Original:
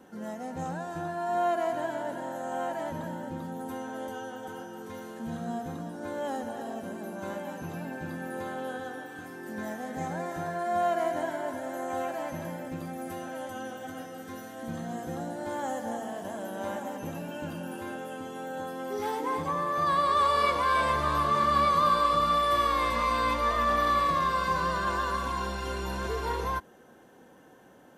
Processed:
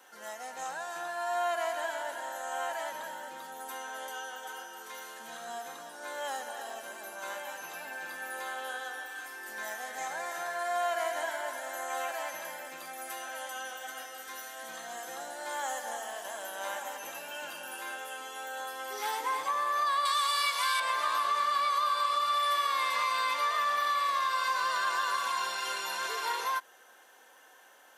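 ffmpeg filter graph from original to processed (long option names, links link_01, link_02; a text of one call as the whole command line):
ffmpeg -i in.wav -filter_complex "[0:a]asettb=1/sr,asplit=3[link_01][link_02][link_03];[link_01]atrim=end=20.054[link_04];[link_02]atrim=start=20.05:end=20.8,asetpts=PTS-STARTPTS,afade=type=in:duration=0.004:curve=qsin,afade=type=out:start_time=0.746:duration=0.004:curve=qsin,highpass=frequency=680:poles=1,highshelf=frequency=2700:gain=12,aeval=exprs='val(0)+0.0126*(sin(2*PI*50*n/s)+sin(2*PI*2*50*n/s)/2+sin(2*PI*3*50*n/s)/3+sin(2*PI*4*50*n/s)/4+sin(2*PI*5*50*n/s)/5)':channel_layout=same[link_05];[link_03]atrim=start=20.796[link_06];[link_04][link_05]acrossfade=duration=0.004:curve1=hsin:curve2=qsin[link_07];[link_07][link_06]acrossfade=duration=0.004:curve1=qsin:curve2=hsin,highpass=590,tiltshelf=frequency=840:gain=-7.5,acompressor=threshold=-26dB:ratio=6" out.wav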